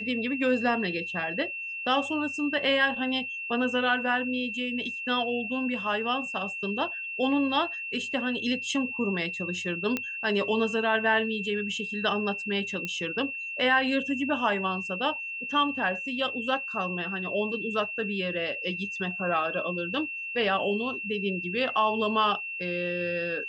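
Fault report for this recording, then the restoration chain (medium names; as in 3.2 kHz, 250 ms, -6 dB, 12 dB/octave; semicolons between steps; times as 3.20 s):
whine 2.7 kHz -33 dBFS
9.97 s: pop -14 dBFS
12.85 s: pop -18 dBFS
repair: de-click; band-stop 2.7 kHz, Q 30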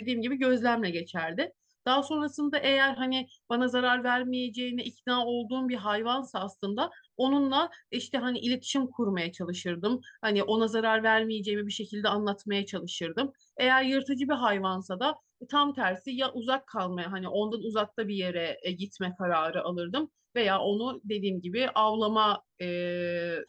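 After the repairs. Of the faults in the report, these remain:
nothing left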